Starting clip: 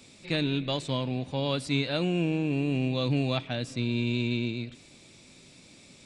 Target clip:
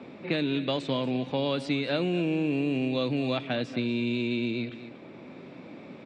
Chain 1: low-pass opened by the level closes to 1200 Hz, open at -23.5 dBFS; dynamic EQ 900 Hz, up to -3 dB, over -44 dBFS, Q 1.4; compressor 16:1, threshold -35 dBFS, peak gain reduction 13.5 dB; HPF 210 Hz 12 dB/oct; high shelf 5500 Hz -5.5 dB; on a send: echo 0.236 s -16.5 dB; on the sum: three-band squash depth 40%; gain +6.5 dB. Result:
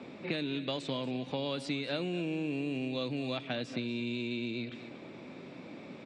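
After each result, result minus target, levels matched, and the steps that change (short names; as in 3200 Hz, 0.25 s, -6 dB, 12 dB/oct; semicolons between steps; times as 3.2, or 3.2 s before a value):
compressor: peak gain reduction +7.5 dB; 8000 Hz band +7.0 dB
change: compressor 16:1, threshold -27 dBFS, peak gain reduction 6 dB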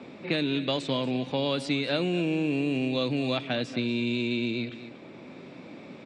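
8000 Hz band +5.5 dB
change: high shelf 5500 Hz -15.5 dB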